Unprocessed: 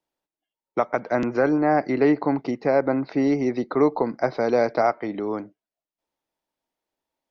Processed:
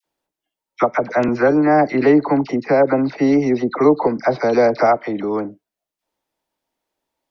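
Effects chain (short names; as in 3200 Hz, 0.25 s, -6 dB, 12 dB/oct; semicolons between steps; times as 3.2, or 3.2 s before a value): dispersion lows, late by 55 ms, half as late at 1100 Hz; gain +6 dB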